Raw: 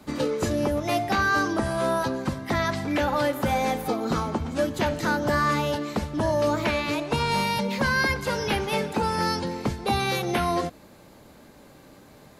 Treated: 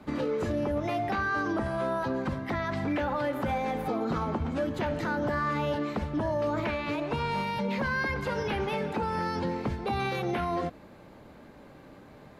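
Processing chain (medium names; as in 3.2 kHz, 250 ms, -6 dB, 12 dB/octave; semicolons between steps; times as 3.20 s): peak limiter -21.5 dBFS, peak gain reduction 7.5 dB; tone controls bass 0 dB, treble -14 dB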